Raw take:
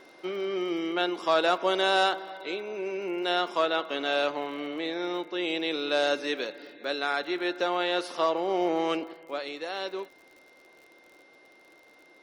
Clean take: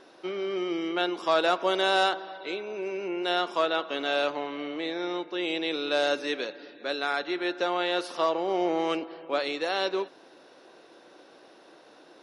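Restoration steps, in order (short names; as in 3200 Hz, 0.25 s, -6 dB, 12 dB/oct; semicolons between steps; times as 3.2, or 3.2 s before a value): de-click; notch 2100 Hz, Q 30; gain 0 dB, from 9.13 s +6 dB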